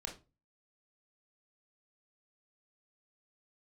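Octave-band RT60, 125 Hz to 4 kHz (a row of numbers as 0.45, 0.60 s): 0.45, 0.40, 0.30, 0.25, 0.25, 0.20 s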